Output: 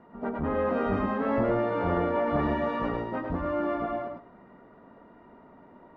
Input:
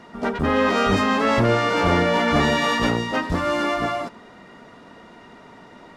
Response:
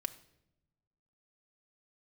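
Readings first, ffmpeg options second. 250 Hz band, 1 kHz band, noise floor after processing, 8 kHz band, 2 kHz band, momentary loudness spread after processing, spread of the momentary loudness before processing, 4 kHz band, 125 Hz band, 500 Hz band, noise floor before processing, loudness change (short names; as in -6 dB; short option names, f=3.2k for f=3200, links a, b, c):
-7.0 dB, -9.0 dB, -54 dBFS, under -35 dB, -14.5 dB, 6 LU, 6 LU, -23.5 dB, -9.0 dB, -6.0 dB, -46 dBFS, -8.5 dB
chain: -filter_complex "[0:a]lowpass=1.2k,bandreject=f=60:t=h:w=6,bandreject=f=120:t=h:w=6,asplit=2[a][b];[1:a]atrim=start_sample=2205,adelay=105[c];[b][c]afir=irnorm=-1:irlink=0,volume=-3.5dB[d];[a][d]amix=inputs=2:normalize=0,volume=-8dB"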